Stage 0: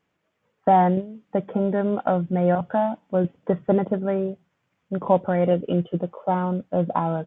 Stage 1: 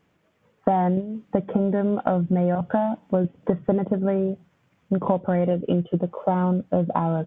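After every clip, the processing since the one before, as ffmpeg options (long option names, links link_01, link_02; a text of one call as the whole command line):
ffmpeg -i in.wav -af "lowshelf=frequency=400:gain=6,acompressor=threshold=-24dB:ratio=6,volume=5.5dB" out.wav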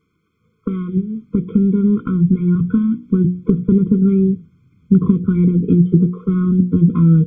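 ffmpeg -i in.wav -af "asubboost=boost=8.5:cutoff=240,bandreject=frequency=60:width_type=h:width=6,bandreject=frequency=120:width_type=h:width=6,bandreject=frequency=180:width_type=h:width=6,bandreject=frequency=240:width_type=h:width=6,bandreject=frequency=300:width_type=h:width=6,bandreject=frequency=360:width_type=h:width=6,bandreject=frequency=420:width_type=h:width=6,bandreject=frequency=480:width_type=h:width=6,bandreject=frequency=540:width_type=h:width=6,bandreject=frequency=600:width_type=h:width=6,afftfilt=real='re*eq(mod(floor(b*sr/1024/510),2),0)':imag='im*eq(mod(floor(b*sr/1024/510),2),0)':win_size=1024:overlap=0.75,volume=1dB" out.wav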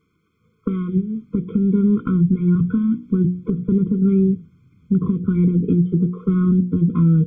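ffmpeg -i in.wav -af "alimiter=limit=-9dB:level=0:latency=1:release=246" out.wav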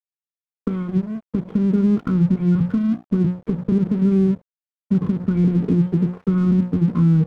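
ffmpeg -i in.wav -af "aeval=exprs='sgn(val(0))*max(abs(val(0))-0.0158,0)':channel_layout=same" out.wav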